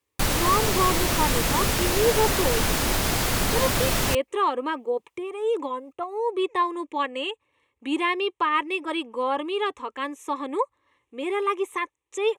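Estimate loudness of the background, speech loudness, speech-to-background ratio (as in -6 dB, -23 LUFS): -23.5 LUFS, -27.0 LUFS, -3.5 dB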